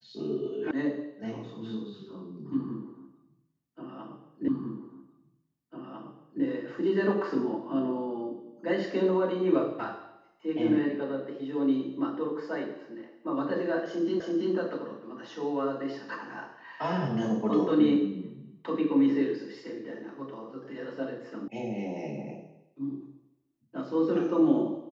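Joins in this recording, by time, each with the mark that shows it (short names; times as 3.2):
0.71 sound cut off
4.48 repeat of the last 1.95 s
14.2 repeat of the last 0.33 s
21.48 sound cut off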